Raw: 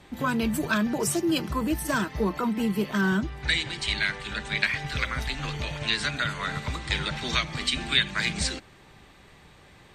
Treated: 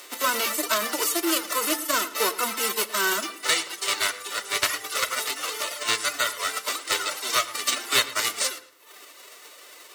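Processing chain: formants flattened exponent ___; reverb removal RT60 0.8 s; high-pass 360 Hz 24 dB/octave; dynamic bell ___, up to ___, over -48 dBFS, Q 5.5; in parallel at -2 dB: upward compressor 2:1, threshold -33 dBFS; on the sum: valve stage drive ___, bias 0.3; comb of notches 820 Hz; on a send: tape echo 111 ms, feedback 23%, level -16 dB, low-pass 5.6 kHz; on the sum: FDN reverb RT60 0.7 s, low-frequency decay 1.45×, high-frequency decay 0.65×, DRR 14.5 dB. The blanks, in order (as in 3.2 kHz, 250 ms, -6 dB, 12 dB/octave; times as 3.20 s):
0.3, 1.3 kHz, +6 dB, 9 dB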